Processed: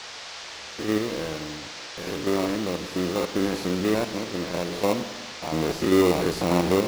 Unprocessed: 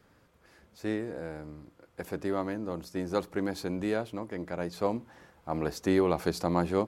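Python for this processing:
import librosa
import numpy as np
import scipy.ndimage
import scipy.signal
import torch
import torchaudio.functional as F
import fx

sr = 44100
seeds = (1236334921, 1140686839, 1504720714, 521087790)

p1 = fx.spec_steps(x, sr, hold_ms=100)
p2 = fx.low_shelf(p1, sr, hz=190.0, db=-6.0)
p3 = fx.sample_hold(p2, sr, seeds[0], rate_hz=1600.0, jitter_pct=0)
p4 = p2 + F.gain(torch.from_numpy(p3), -3.5).numpy()
p5 = fx.dmg_noise_band(p4, sr, seeds[1], low_hz=430.0, high_hz=5700.0, level_db=-45.0)
p6 = fx.rev_schroeder(p5, sr, rt60_s=1.5, comb_ms=38, drr_db=10.5)
y = F.gain(torch.from_numpy(p6), 5.5).numpy()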